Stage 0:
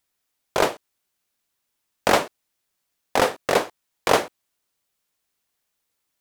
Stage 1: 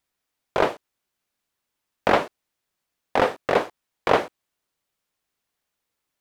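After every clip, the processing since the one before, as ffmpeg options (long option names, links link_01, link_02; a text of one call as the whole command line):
ffmpeg -i in.wav -filter_complex "[0:a]acrossover=split=4100[link_01][link_02];[link_02]acompressor=threshold=-41dB:ratio=4:attack=1:release=60[link_03];[link_01][link_03]amix=inputs=2:normalize=0,highshelf=frequency=4000:gain=-6.5" out.wav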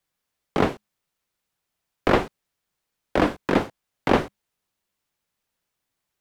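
ffmpeg -i in.wav -af "afreqshift=-210" out.wav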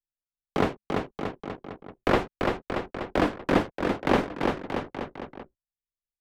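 ffmpeg -i in.wav -af "aecho=1:1:340|629|874.6|1083|1261:0.631|0.398|0.251|0.158|0.1,anlmdn=0.631,volume=-3.5dB" out.wav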